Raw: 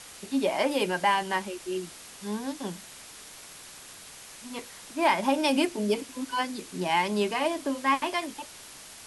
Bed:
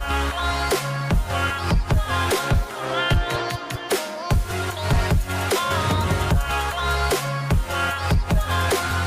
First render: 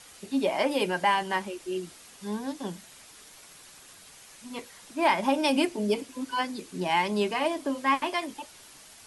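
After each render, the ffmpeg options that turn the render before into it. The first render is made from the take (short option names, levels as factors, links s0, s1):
-af "afftdn=nr=6:nf=-47"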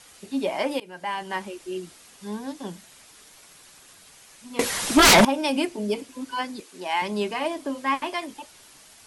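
-filter_complex "[0:a]asettb=1/sr,asplit=3[s0][s1][s2];[s0]atrim=end=4.594[s3];[s1]atrim=start=4.59:end=5.25,asetpts=PTS-STARTPTS,afade=t=in:d=0.004:c=qsin,afade=t=out:st=0.656:d=0.004:c=qsin,aeval=exprs='0.316*sin(PI/2*7.94*val(0)/0.316)':c=same[s4];[s2]atrim=start=5.246[s5];[s3][s4]acrossfade=d=0.004:c1=hsin:c2=qsin[s6];[s6][s5]acrossfade=d=0.004:c1=qsin:c2=hsin,asettb=1/sr,asplit=3[s7][s8][s9];[s7]atrim=end=6.604[s10];[s8]atrim=start=6.6:end=7.02,asetpts=PTS-STARTPTS,afade=t=in:d=0.004:c=qsin,afade=t=out:st=0.416:d=0.004:c=qsin,highpass=450[s11];[s9]atrim=start=7.016[s12];[s10][s11]acrossfade=d=0.004:c1=hsin:c2=qsin[s13];[s13][s12]acrossfade=d=0.004:c1=qsin:c2=hsin,asplit=2[s14][s15];[s14]atrim=end=0.8,asetpts=PTS-STARTPTS,afade=t=out:st=0.796:d=0.004:c=hsin:silence=0.0630957[s16];[s15]atrim=start=0.8,asetpts=PTS-STARTPTS,afade=t=in:d=0.64:silence=0.0630957[s17];[s16][s17]concat=n=2:v=0:a=1"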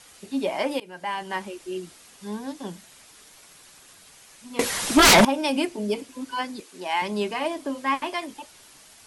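-af anull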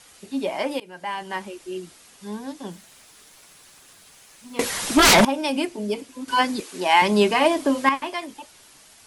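-filter_complex "[0:a]asettb=1/sr,asplit=3[s0][s1][s2];[s0]atrim=end=2.724[s3];[s1]atrim=start=2.72:end=4.66,asetpts=PTS-STARTPTS,afade=t=in:d=0.004:c=qsin,afade=t=out:st=1.936:d=0.004:c=qsin,acrusher=bits=8:mix=0:aa=0.5[s4];[s2]atrim=start=4.656[s5];[s3][s4]acrossfade=d=0.004:c1=hsin:c2=qsin[s6];[s6][s5]acrossfade=d=0.004:c1=qsin:c2=hsin,asplit=3[s7][s8][s9];[s7]atrim=end=6.282[s10];[s8]atrim=start=6.278:end=7.892,asetpts=PTS-STARTPTS,volume=2.82[s11];[s9]atrim=start=7.888[s12];[s10][s11]acrossfade=d=0.004:c1=hsin:c2=hsin[s13];[s13][s12]acrossfade=d=0.004:c1=hsin:c2=hsin"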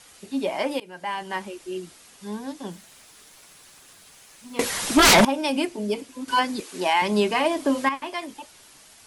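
-af "alimiter=limit=0.299:level=0:latency=1:release=394"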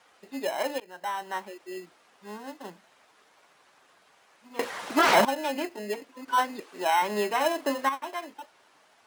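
-filter_complex "[0:a]bandpass=f=840:t=q:w=1:csg=0,acrossover=split=720[s0][s1];[s0]acrusher=samples=19:mix=1:aa=0.000001[s2];[s2][s1]amix=inputs=2:normalize=0"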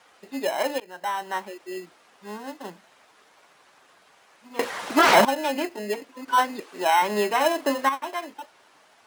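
-af "volume=1.58"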